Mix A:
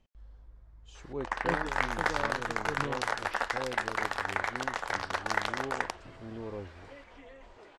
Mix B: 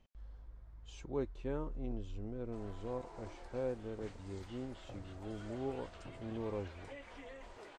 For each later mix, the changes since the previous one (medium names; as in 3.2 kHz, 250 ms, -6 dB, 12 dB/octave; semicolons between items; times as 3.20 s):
speech: add distance through air 73 m; first sound: muted; master: remove distance through air 55 m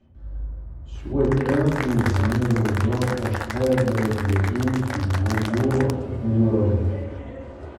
first sound: unmuted; reverb: on, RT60 1.2 s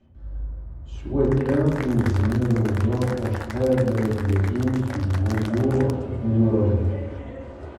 first sound -5.5 dB